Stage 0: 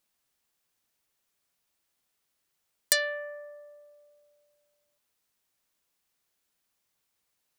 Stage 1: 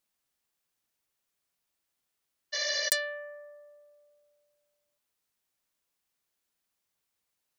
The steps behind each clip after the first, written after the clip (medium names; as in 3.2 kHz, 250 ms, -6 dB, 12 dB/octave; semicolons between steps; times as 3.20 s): spectral replace 2.56–2.86 s, 450–6800 Hz after; trim -4 dB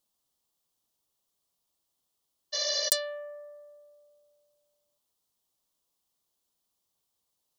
high-order bell 1.9 kHz -10.5 dB 1.1 oct; trim +2.5 dB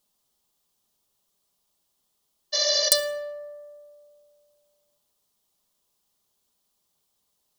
reverberation RT60 0.95 s, pre-delay 5 ms, DRR 7 dB; trim +5.5 dB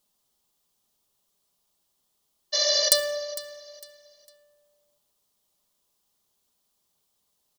feedback delay 454 ms, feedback 32%, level -17 dB